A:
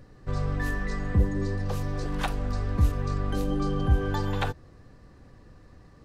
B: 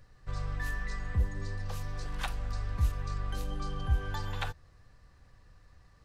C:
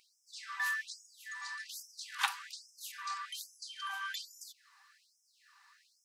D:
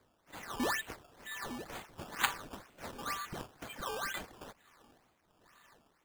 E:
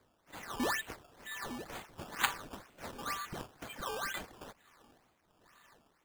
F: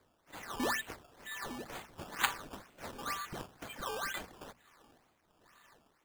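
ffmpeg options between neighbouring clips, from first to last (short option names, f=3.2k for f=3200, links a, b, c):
-af "equalizer=f=290:w=0.59:g=-14.5,volume=-3dB"
-af "afftfilt=real='re*gte(b*sr/1024,760*pow(5200/760,0.5+0.5*sin(2*PI*1.2*pts/sr)))':imag='im*gte(b*sr/1024,760*pow(5200/760,0.5+0.5*sin(2*PI*1.2*pts/sr)))':win_size=1024:overlap=0.75,volume=6.5dB"
-af "acrusher=samples=15:mix=1:aa=0.000001:lfo=1:lforange=15:lforate=2.1,volume=1dB"
-af anull
-af "bandreject=f=60:t=h:w=6,bandreject=f=120:t=h:w=6,bandreject=f=180:t=h:w=6,bandreject=f=240:t=h:w=6"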